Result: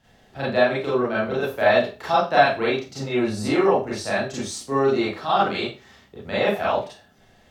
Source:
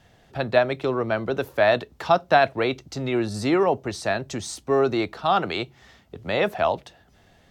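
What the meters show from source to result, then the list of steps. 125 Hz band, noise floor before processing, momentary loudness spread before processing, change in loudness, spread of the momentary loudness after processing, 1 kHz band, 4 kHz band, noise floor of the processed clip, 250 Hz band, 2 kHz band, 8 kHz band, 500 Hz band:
-0.5 dB, -57 dBFS, 11 LU, +1.5 dB, 10 LU, +1.5 dB, +1.5 dB, -56 dBFS, +1.5 dB, +2.0 dB, +1.5 dB, +1.0 dB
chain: Schroeder reverb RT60 0.31 s, combs from 29 ms, DRR -8 dB; gain -7 dB

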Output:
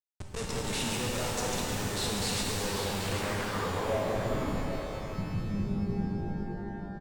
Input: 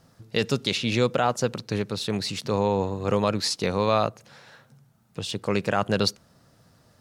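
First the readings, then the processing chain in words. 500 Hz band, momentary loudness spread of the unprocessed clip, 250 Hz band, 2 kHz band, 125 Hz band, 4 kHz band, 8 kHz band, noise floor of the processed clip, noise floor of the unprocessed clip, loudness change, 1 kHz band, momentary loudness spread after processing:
-8.5 dB, 7 LU, -5.0 dB, -4.0 dB, -3.5 dB, -6.0 dB, +1.0 dB, -40 dBFS, -61 dBFS, -7.0 dB, -7.5 dB, 6 LU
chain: reverse delay 0.122 s, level -12 dB; reverse; compressor 4:1, threshold -32 dBFS, peak gain reduction 13.5 dB; reverse; short-mantissa float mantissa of 2-bit; Schmitt trigger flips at -44.5 dBFS; low-pass sweep 8400 Hz -> 190 Hz, 2.43–4.72; on a send: echo 0.786 s -9.5 dB; on the sum: shimmer reverb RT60 2.9 s, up +12 st, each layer -8 dB, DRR -1.5 dB

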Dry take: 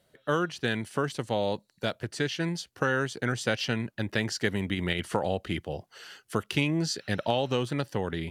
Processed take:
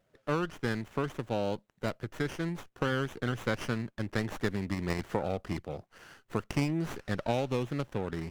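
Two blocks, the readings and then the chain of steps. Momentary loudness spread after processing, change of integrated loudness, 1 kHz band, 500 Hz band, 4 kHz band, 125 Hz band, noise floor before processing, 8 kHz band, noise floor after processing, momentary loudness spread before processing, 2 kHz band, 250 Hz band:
6 LU, -4.0 dB, -4.0 dB, -3.5 dB, -10.0 dB, -2.0 dB, -69 dBFS, -9.5 dB, -73 dBFS, 7 LU, -6.5 dB, -2.5 dB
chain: running maximum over 9 samples; gain -4 dB

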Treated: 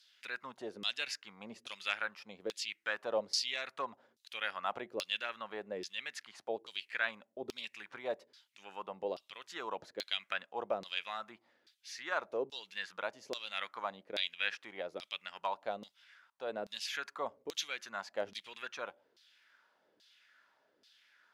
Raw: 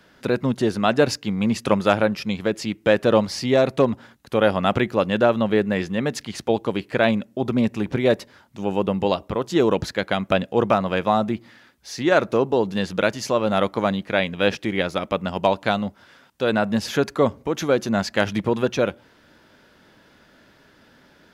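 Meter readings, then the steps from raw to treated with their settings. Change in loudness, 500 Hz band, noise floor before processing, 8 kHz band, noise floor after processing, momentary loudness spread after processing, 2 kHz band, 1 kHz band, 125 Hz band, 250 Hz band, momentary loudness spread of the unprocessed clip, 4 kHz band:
-17.5 dB, -21.0 dB, -55 dBFS, -11.0 dB, -76 dBFS, 9 LU, -12.0 dB, -17.0 dB, -36.5 dB, -30.5 dB, 6 LU, -8.5 dB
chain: LFO band-pass saw down 1.2 Hz 380–4600 Hz; pre-emphasis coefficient 0.9; gain +5.5 dB

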